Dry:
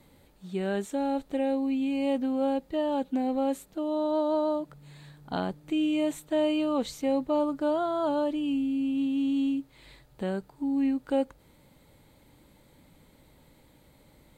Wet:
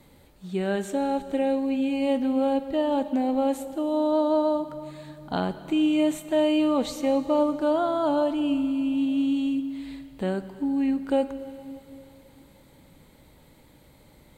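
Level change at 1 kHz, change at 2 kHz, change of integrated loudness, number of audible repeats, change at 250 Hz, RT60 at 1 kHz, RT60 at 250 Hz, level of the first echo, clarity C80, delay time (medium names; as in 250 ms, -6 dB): +4.0 dB, +4.0 dB, +3.5 dB, no echo, +3.5 dB, 3.0 s, 2.8 s, no echo, 13.0 dB, no echo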